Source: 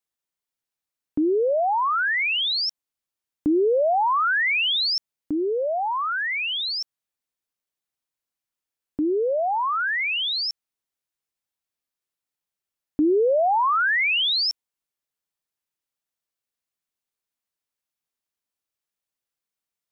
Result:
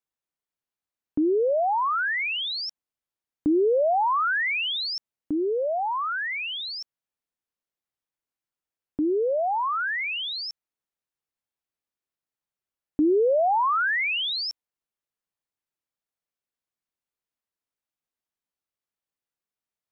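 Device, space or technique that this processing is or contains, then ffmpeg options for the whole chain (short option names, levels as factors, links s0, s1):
behind a face mask: -af "highshelf=f=2700:g=-7.5,volume=0.891"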